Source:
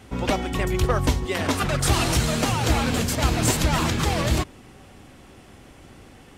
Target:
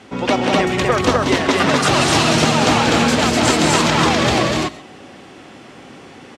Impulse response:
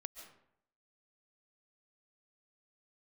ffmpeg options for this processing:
-filter_complex "[0:a]highpass=190,lowpass=6200,aecho=1:1:154.5|186.6|250.7:0.251|0.631|0.891,asplit=2[link_01][link_02];[1:a]atrim=start_sample=2205,atrim=end_sample=6174[link_03];[link_02][link_03]afir=irnorm=-1:irlink=0,volume=8dB[link_04];[link_01][link_04]amix=inputs=2:normalize=0,volume=-1dB"

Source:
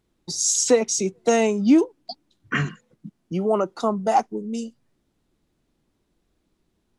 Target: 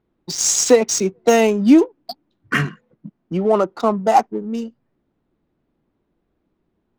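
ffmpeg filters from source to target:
ffmpeg -i in.wav -filter_complex "[0:a]lowshelf=frequency=94:gain=-7.5,asplit=2[link_01][link_02];[link_02]aeval=exprs='sgn(val(0))*max(abs(val(0))-0.0119,0)':channel_layout=same,volume=-11dB[link_03];[link_01][link_03]amix=inputs=2:normalize=0,adynamicsmooth=sensitivity=5.5:basefreq=2100,volume=3.5dB" out.wav

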